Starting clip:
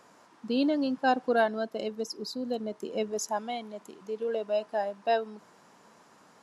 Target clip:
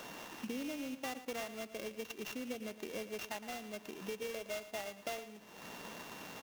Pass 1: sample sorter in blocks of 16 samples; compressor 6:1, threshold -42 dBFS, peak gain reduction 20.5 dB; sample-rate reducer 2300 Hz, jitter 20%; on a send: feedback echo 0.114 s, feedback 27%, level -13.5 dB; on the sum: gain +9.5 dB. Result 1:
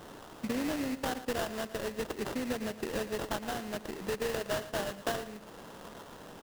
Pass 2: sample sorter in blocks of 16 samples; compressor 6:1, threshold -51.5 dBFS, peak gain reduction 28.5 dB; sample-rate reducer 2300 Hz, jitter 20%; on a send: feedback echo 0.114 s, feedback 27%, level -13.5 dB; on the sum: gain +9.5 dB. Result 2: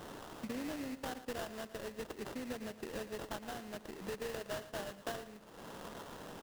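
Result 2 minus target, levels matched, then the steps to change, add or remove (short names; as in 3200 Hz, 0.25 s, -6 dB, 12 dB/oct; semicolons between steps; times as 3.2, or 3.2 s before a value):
sample-rate reducer: distortion +6 dB
change: sample-rate reducer 9000 Hz, jitter 20%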